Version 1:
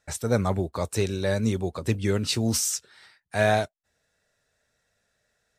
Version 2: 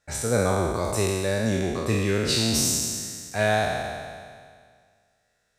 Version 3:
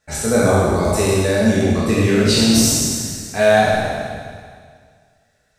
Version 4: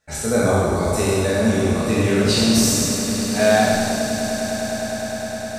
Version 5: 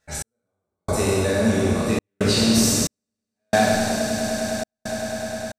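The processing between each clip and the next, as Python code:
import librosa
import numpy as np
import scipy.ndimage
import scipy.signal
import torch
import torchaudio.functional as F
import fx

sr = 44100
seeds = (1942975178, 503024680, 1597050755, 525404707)

y1 = fx.spec_trails(x, sr, decay_s=1.95)
y1 = F.gain(torch.from_numpy(y1), -2.0).numpy()
y2 = fx.room_shoebox(y1, sr, seeds[0], volume_m3=270.0, walls='mixed', distance_m=1.5)
y2 = F.gain(torch.from_numpy(y2), 3.0).numpy()
y3 = fx.echo_swell(y2, sr, ms=102, loudest=8, wet_db=-16.5)
y3 = F.gain(torch.from_numpy(y3), -3.0).numpy()
y4 = fx.step_gate(y3, sr, bpm=68, pattern='x...xxxxx.xx', floor_db=-60.0, edge_ms=4.5)
y4 = F.gain(torch.from_numpy(y4), -1.5).numpy()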